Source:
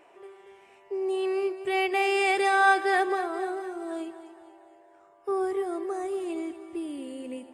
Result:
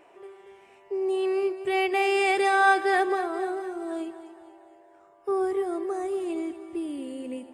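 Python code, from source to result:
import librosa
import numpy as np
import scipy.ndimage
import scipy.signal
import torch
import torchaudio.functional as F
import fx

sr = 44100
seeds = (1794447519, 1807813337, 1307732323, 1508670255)

y = fx.low_shelf(x, sr, hz=440.0, db=3.5)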